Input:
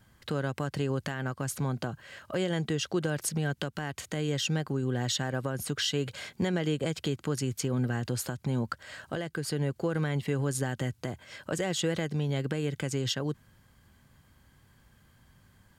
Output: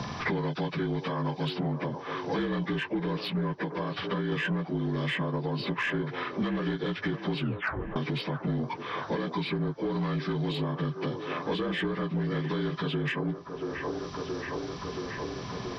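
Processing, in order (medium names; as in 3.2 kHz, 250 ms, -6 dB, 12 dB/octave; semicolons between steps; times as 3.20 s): frequency axis rescaled in octaves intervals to 76%; 3.64–4.32 s: compression 1.5:1, threshold -40 dBFS, peak gain reduction 5 dB; saturation -25 dBFS, distortion -18 dB; 7.39 s: tape stop 0.57 s; feedback echo behind a band-pass 676 ms, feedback 51%, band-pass 640 Hz, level -8.5 dB; three bands compressed up and down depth 100%; trim +2.5 dB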